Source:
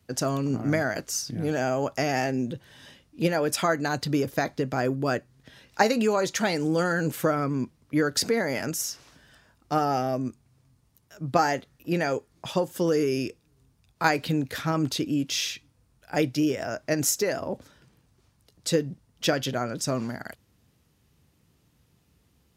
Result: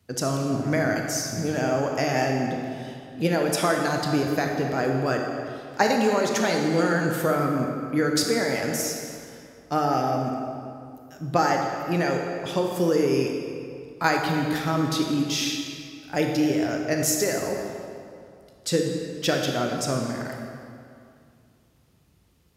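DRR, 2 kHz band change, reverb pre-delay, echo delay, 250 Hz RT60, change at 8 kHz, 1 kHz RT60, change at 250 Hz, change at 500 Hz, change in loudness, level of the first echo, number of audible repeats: 1.5 dB, +2.0 dB, 25 ms, none, 2.5 s, +1.5 dB, 2.3 s, +2.5 dB, +2.5 dB, +2.0 dB, none, none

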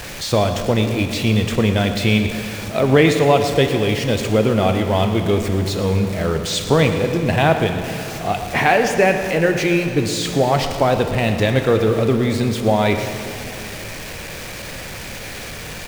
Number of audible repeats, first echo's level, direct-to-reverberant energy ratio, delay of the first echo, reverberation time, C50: 1, -14.0 dB, 5.0 dB, 0.116 s, 3.0 s, 6.0 dB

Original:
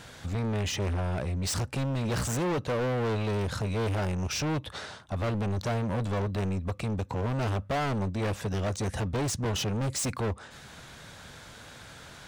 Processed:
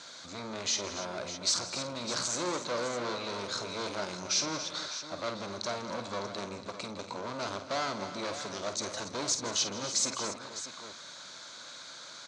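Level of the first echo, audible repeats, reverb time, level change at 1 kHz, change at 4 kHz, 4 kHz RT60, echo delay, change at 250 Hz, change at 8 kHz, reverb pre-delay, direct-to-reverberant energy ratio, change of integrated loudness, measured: -9.5 dB, 5, none, -2.0 dB, +5.0 dB, none, 50 ms, -9.0 dB, +4.5 dB, none, none, -3.0 dB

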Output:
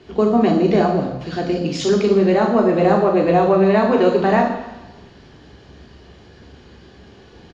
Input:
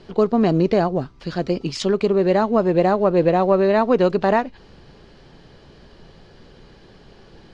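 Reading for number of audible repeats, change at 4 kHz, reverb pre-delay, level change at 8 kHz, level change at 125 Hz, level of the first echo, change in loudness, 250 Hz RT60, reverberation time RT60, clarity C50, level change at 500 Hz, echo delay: 1, +2.5 dB, 3 ms, n/a, +2.0 dB, -8.5 dB, +2.5 dB, 0.95 s, 1.0 s, 6.5 dB, +2.0 dB, 42 ms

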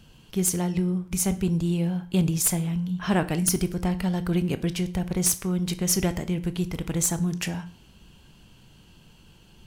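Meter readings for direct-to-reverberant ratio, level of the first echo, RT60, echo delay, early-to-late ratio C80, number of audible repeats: 11.5 dB, none, 0.45 s, none, 21.0 dB, none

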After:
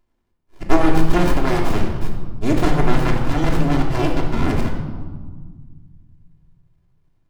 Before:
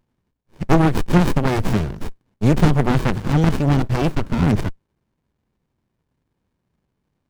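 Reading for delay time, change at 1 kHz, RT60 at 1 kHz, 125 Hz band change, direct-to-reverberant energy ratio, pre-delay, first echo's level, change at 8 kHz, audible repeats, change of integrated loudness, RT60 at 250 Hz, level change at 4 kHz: none, +1.0 dB, 1.5 s, -4.0 dB, -1.0 dB, 3 ms, none, 0.0 dB, none, -2.0 dB, 2.4 s, +0.5 dB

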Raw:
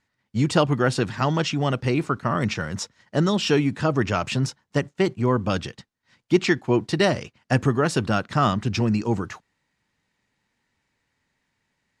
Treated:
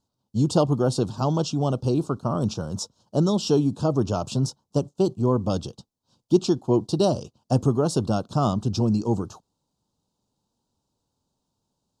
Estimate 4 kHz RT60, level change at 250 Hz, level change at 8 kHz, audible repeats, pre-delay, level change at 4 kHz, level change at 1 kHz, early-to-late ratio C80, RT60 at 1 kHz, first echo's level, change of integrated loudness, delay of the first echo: none, 0.0 dB, -0.5 dB, none, none, -4.5 dB, -4.0 dB, none, none, none, -1.0 dB, none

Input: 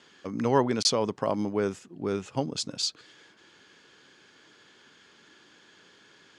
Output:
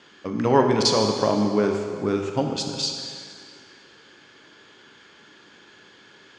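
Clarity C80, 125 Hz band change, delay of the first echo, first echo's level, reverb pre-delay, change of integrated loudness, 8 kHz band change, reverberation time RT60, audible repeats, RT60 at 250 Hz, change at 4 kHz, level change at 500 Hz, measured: 5.5 dB, +6.5 dB, none, none, 9 ms, +5.5 dB, +2.0 dB, 2.0 s, none, 1.9 s, +4.5 dB, +6.5 dB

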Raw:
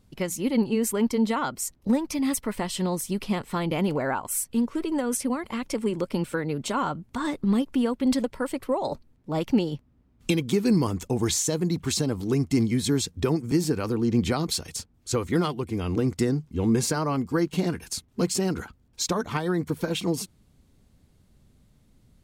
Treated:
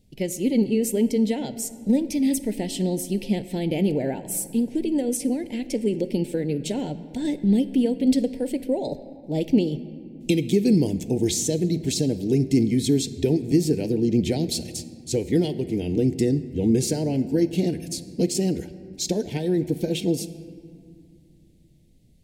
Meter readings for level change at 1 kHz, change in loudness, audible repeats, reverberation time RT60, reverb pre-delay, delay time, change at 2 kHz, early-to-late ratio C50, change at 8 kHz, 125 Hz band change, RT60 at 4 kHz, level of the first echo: -9.5 dB, +2.5 dB, none, 2.3 s, 3 ms, none, -5.5 dB, 14.0 dB, 0.0 dB, +2.0 dB, 1.3 s, none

